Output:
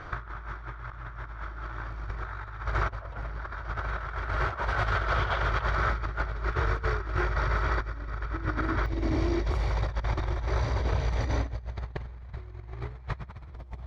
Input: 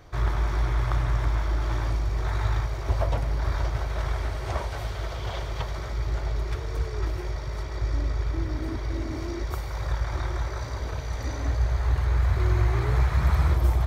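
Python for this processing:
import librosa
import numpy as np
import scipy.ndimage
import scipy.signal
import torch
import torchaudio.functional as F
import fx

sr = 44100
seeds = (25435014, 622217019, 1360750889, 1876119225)

y = scipy.signal.sosfilt(scipy.signal.butter(2, 4000.0, 'lowpass', fs=sr, output='sos'), x)
y = fx.peak_eq(y, sr, hz=1400.0, db=fx.steps((0.0, 14.5), (8.86, -2.5)), octaves=0.74)
y = fx.over_compress(y, sr, threshold_db=-30.0, ratio=-0.5)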